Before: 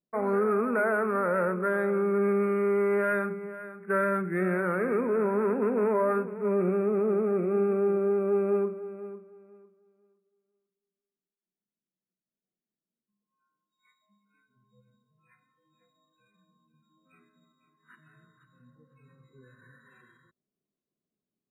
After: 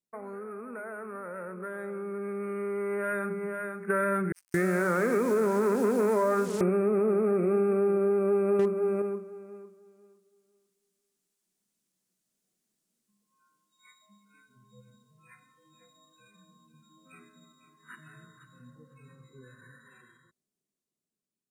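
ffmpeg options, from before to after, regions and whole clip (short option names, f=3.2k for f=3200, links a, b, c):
-filter_complex "[0:a]asettb=1/sr,asplit=3[a][b][c];[a]atrim=end=4.324[d];[b]atrim=start=4.32:end=6.61,asetpts=PTS-STARTPTS,afade=t=in:d=0.004:c=qsin,afade=t=out:st=2.286:d=0.004:c=qsin,acrossover=split=4500[e][f];[e]adelay=220[g];[g][f]amix=inputs=2:normalize=0,atrim=end_sample=100989,acrusher=bits=7:mix=0:aa=0.5[h];[c]atrim=start=6.606[i];[d][h]acrossfade=d=0.004:c1=hsin:c2=qsin[j];[j][i]acrossfade=d=0.004:c1=qsin:c2=hsin,asettb=1/sr,asplit=3[k][l][m];[k]atrim=end=8.594[n];[l]atrim=start=8.59:end=9.02,asetpts=PTS-STARTPTS,afade=t=in:d=0.004:c=qsin,afade=t=out:st=0.426:d=0.004:c=qsin,acontrast=63,asoftclip=type=hard:threshold=-16dB[o];[m]atrim=start=9.016[p];[n][o]acrossfade=d=0.004:c1=hsin:c2=qsin[q];[q][p]acrossfade=d=0.004:c1=qsin:c2=hsin,acompressor=threshold=-32dB:ratio=4,equalizer=f=8.1k:w=0.76:g=10.5,dynaudnorm=f=730:g=9:m=15.5dB,volume=-7dB"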